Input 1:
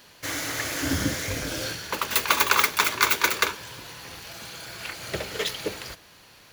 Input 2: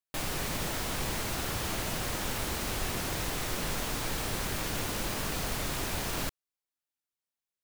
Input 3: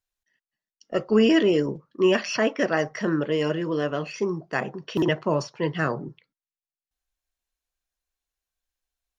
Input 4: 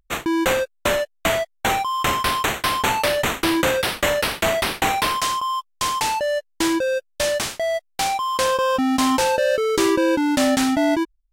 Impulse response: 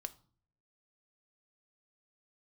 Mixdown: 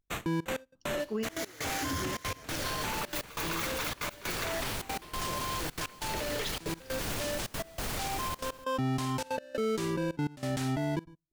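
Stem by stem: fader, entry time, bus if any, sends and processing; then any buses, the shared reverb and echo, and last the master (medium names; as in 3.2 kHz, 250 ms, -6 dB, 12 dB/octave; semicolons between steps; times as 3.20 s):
-4.0 dB, 1.00 s, bus A, no send, no echo send, none
+2.0 dB, 2.35 s, no bus, no send, no echo send, none
-12.5 dB, 0.00 s, no bus, no send, no echo send, none
-16.0 dB, 0.00 s, bus A, send -5.5 dB, echo send -20.5 dB, octave divider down 1 oct, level +2 dB
bus A: 0.0 dB, waveshaping leveller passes 2; peak limiter -17.5 dBFS, peak gain reduction 10 dB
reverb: on, RT60 0.45 s, pre-delay 3 ms
echo: delay 101 ms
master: trance gate "xxxxx.x..xx" 187 bpm -24 dB; peak limiter -25 dBFS, peak gain reduction 11 dB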